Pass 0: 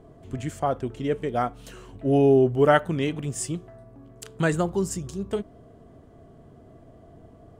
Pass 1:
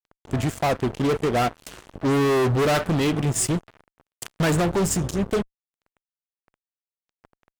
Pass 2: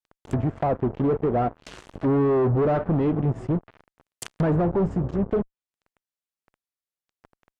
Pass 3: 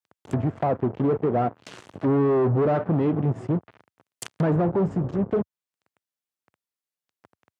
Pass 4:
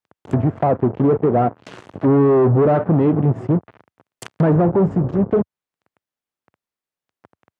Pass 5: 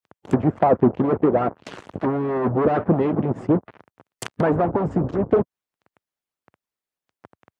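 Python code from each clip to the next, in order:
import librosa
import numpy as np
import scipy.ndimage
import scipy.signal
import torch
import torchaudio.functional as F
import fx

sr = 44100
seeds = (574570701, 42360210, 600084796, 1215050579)

y1 = fx.fuzz(x, sr, gain_db=31.0, gate_db=-40.0)
y1 = y1 * librosa.db_to_amplitude(-5.0)
y2 = fx.env_lowpass_down(y1, sr, base_hz=910.0, full_db=-21.5)
y3 = scipy.signal.sosfilt(scipy.signal.butter(4, 88.0, 'highpass', fs=sr, output='sos'), y2)
y4 = fx.high_shelf(y3, sr, hz=3000.0, db=-11.0)
y4 = y4 * librosa.db_to_amplitude(7.0)
y5 = fx.hpss(y4, sr, part='harmonic', gain_db=-15)
y5 = y5 * librosa.db_to_amplitude(3.5)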